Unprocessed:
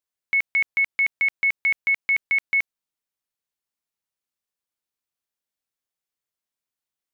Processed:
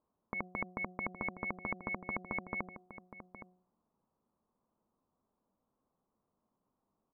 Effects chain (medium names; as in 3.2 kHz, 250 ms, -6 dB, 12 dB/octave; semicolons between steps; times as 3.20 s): Chebyshev low-pass 1.1 kHz, order 4; peaking EQ 210 Hz +9.5 dB 0.66 oct; de-hum 182.1 Hz, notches 4; peak limiter -36.5 dBFS, peak gain reduction 8 dB; echo from a far wall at 140 m, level -11 dB; trim +16 dB